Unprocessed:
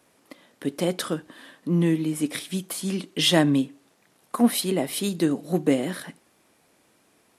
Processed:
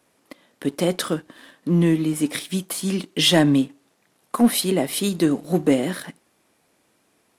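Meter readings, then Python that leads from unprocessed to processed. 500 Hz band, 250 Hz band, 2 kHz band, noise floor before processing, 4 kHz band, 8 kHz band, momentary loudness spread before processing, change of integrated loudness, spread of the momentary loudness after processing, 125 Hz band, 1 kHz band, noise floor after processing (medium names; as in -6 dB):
+3.0 dB, +3.5 dB, +3.0 dB, -64 dBFS, +3.5 dB, +3.5 dB, 13 LU, +3.5 dB, 12 LU, +3.5 dB, +3.0 dB, -66 dBFS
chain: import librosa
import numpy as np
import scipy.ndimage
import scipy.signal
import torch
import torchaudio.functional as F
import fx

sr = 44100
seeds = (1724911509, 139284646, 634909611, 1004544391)

y = fx.leveller(x, sr, passes=1)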